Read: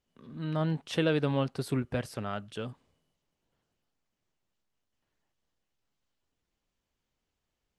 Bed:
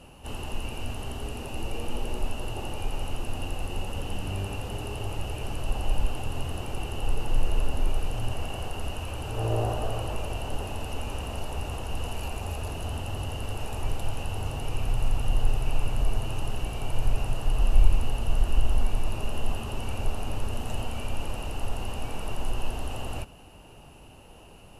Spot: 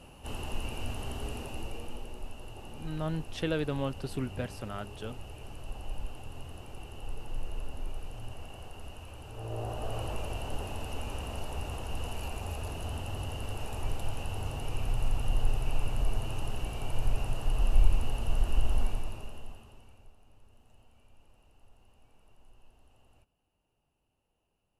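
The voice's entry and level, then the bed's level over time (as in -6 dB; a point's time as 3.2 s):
2.45 s, -4.0 dB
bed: 1.35 s -2.5 dB
2.13 s -12 dB
9.44 s -12 dB
10.01 s -4 dB
18.84 s -4 dB
20.16 s -30 dB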